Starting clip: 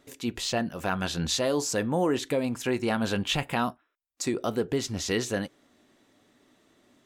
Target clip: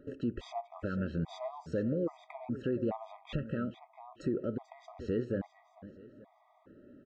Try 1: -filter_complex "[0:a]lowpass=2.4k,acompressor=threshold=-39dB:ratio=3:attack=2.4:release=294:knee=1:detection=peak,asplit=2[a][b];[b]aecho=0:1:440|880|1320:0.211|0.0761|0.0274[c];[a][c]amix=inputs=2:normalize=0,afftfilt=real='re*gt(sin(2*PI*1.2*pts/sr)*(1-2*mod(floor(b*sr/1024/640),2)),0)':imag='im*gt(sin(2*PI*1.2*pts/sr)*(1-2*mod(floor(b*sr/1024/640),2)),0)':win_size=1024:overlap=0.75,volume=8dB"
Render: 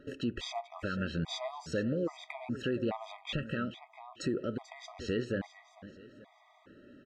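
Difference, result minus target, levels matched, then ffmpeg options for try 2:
2000 Hz band +7.5 dB
-filter_complex "[0:a]lowpass=1k,acompressor=threshold=-39dB:ratio=3:attack=2.4:release=294:knee=1:detection=peak,asplit=2[a][b];[b]aecho=0:1:440|880|1320:0.211|0.0761|0.0274[c];[a][c]amix=inputs=2:normalize=0,afftfilt=real='re*gt(sin(2*PI*1.2*pts/sr)*(1-2*mod(floor(b*sr/1024/640),2)),0)':imag='im*gt(sin(2*PI*1.2*pts/sr)*(1-2*mod(floor(b*sr/1024/640),2)),0)':win_size=1024:overlap=0.75,volume=8dB"

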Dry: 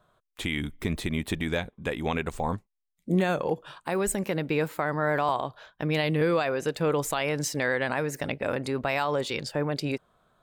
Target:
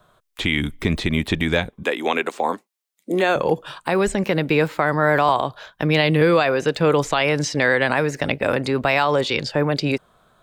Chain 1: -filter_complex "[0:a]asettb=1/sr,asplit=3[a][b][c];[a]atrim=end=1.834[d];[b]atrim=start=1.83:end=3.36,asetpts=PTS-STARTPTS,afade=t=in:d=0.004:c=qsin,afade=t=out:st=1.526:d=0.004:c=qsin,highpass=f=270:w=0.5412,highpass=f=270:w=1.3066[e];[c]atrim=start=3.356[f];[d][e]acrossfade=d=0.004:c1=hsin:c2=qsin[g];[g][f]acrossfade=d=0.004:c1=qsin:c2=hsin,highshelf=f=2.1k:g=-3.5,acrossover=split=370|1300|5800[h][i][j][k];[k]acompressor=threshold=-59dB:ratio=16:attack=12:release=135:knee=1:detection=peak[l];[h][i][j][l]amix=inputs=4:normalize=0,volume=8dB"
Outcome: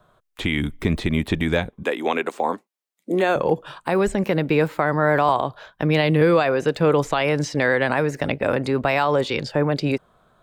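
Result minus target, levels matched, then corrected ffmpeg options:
4000 Hz band -4.0 dB
-filter_complex "[0:a]asettb=1/sr,asplit=3[a][b][c];[a]atrim=end=1.834[d];[b]atrim=start=1.83:end=3.36,asetpts=PTS-STARTPTS,afade=t=in:d=0.004:c=qsin,afade=t=out:st=1.526:d=0.004:c=qsin,highpass=f=270:w=0.5412,highpass=f=270:w=1.3066[e];[c]atrim=start=3.356[f];[d][e]acrossfade=d=0.004:c1=hsin:c2=qsin[g];[g][f]acrossfade=d=0.004:c1=qsin:c2=hsin,highshelf=f=2.1k:g=3.5,acrossover=split=370|1300|5800[h][i][j][k];[k]acompressor=threshold=-59dB:ratio=16:attack=12:release=135:knee=1:detection=peak[l];[h][i][j][l]amix=inputs=4:normalize=0,volume=8dB"

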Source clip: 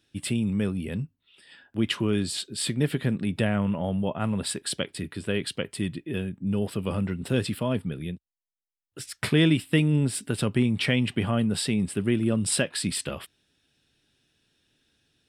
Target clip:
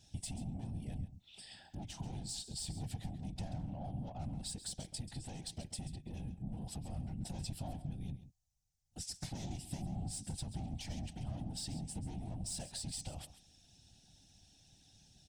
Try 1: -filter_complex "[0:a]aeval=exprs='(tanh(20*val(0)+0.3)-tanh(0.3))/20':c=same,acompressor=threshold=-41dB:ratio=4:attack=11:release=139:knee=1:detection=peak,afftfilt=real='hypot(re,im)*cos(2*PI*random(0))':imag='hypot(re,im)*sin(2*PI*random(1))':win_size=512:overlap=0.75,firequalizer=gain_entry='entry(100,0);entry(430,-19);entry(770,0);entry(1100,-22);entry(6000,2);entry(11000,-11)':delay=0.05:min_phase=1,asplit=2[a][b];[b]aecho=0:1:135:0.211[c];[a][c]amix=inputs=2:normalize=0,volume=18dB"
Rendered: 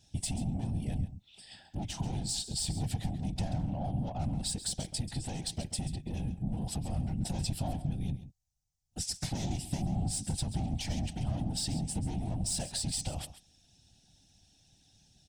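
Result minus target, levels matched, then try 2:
compressor: peak gain reduction -8.5 dB
-filter_complex "[0:a]aeval=exprs='(tanh(20*val(0)+0.3)-tanh(0.3))/20':c=same,acompressor=threshold=-52.5dB:ratio=4:attack=11:release=139:knee=1:detection=peak,afftfilt=real='hypot(re,im)*cos(2*PI*random(0))':imag='hypot(re,im)*sin(2*PI*random(1))':win_size=512:overlap=0.75,firequalizer=gain_entry='entry(100,0);entry(430,-19);entry(770,0);entry(1100,-22);entry(6000,2);entry(11000,-11)':delay=0.05:min_phase=1,asplit=2[a][b];[b]aecho=0:1:135:0.211[c];[a][c]amix=inputs=2:normalize=0,volume=18dB"

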